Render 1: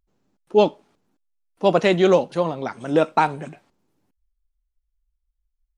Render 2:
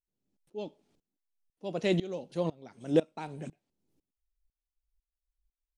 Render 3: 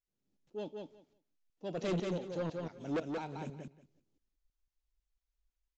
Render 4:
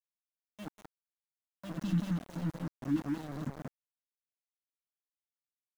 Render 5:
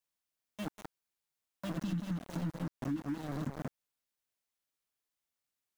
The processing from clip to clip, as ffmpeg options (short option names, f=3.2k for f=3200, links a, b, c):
-af "equalizer=f=1.2k:w=0.84:g=-11.5,aeval=exprs='val(0)*pow(10,-23*if(lt(mod(-2*n/s,1),2*abs(-2)/1000),1-mod(-2*n/s,1)/(2*abs(-2)/1000),(mod(-2*n/s,1)-2*abs(-2)/1000)/(1-2*abs(-2)/1000))/20)':c=same,volume=-2dB"
-af "aresample=16000,asoftclip=type=tanh:threshold=-29dB,aresample=44100,aecho=1:1:180|360|540:0.631|0.0946|0.0142,volume=-1.5dB"
-af "afftfilt=real='re*(1-between(b*sr/4096,330,2600))':imag='im*(1-between(b*sr/4096,330,2600))':win_size=4096:overlap=0.75,aeval=exprs='val(0)*gte(abs(val(0)),0.00596)':c=same,highshelf=f=2.2k:t=q:w=1.5:g=-8.5,volume=6.5dB"
-af "acompressor=threshold=-40dB:ratio=6,volume=6.5dB"